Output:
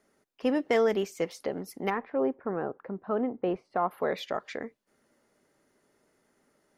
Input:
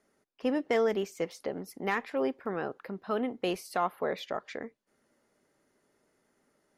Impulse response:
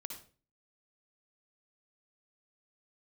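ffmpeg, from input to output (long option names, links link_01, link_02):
-filter_complex "[0:a]asplit=3[link_01][link_02][link_03];[link_01]afade=type=out:start_time=1.89:duration=0.02[link_04];[link_02]lowpass=1200,afade=type=in:start_time=1.89:duration=0.02,afade=type=out:start_time=3.9:duration=0.02[link_05];[link_03]afade=type=in:start_time=3.9:duration=0.02[link_06];[link_04][link_05][link_06]amix=inputs=3:normalize=0,volume=2.5dB"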